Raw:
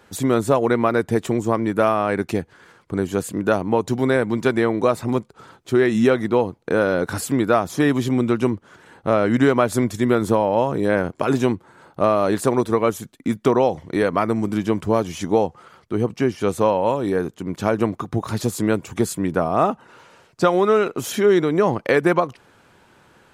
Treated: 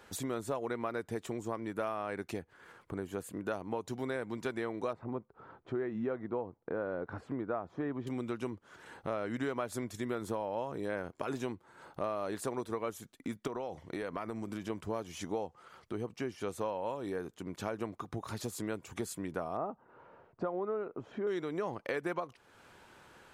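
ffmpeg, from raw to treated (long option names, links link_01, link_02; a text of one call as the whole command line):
ffmpeg -i in.wav -filter_complex "[0:a]asettb=1/sr,asplit=3[link_01][link_02][link_03];[link_01]atrim=end=2.394[link_04];[link_02]atrim=start=2.39:end=3.47,asetpts=PTS-STARTPTS,afade=type=in:duration=0.004:curve=qsin,afade=type=out:start_time=1.076:duration=0.004:curve=qsin,equalizer=frequency=5300:width_type=o:width=1.5:gain=-6.5[link_05];[link_03]atrim=start=3.466[link_06];[link_04][link_05]acrossfade=duration=0.004:curve1=hsin:curve2=qsin[link_07];[link_07][link_06]acrossfade=duration=0.004:curve1=qsin:curve2=hsin,asettb=1/sr,asplit=3[link_08][link_09][link_10];[link_08]atrim=end=4.934[link_11];[link_09]atrim=start=4.93:end=8.07,asetpts=PTS-STARTPTS,afade=type=in:duration=0.004:curve=qsin,afade=type=out:start_time=3.136:duration=0.004:curve=qsin,lowpass=1300[link_12];[link_10]atrim=start=8.066[link_13];[link_11][link_12]acrossfade=duration=0.004:curve1=hsin:curve2=qsin[link_14];[link_14][link_13]acrossfade=duration=0.004:curve1=qsin:curve2=hsin,asettb=1/sr,asplit=3[link_15][link_16][link_17];[link_15]atrim=end=13.474[link_18];[link_16]atrim=start=13.47:end=14.7,asetpts=PTS-STARTPTS,afade=type=in:duration=0.004:curve=qsin,afade=type=out:start_time=1.226:duration=0.004:curve=qsin,acompressor=threshold=-18dB:ratio=6:attack=3.2:release=140:knee=1:detection=peak[link_19];[link_17]atrim=start=14.696[link_20];[link_18][link_19]acrossfade=duration=0.004:curve1=hsin:curve2=qsin[link_21];[link_21][link_20]acrossfade=duration=0.004:curve1=qsin:curve2=hsin,asettb=1/sr,asplit=3[link_22][link_23][link_24];[link_22]atrim=end=19.574[link_25];[link_23]atrim=start=19.57:end=21.27,asetpts=PTS-STARTPTS,afade=type=in:duration=0.004:curve=qsin,afade=type=out:start_time=1.696:duration=0.004:curve=qsin,lowpass=1000[link_26];[link_24]atrim=start=21.266[link_27];[link_25][link_26]acrossfade=duration=0.004:curve1=hsin:curve2=qsin[link_28];[link_28][link_27]acrossfade=duration=0.004:curve1=qsin:curve2=hsin,equalizer=frequency=160:width=0.6:gain=-5,acompressor=threshold=-40dB:ratio=2,volume=-3.5dB" out.wav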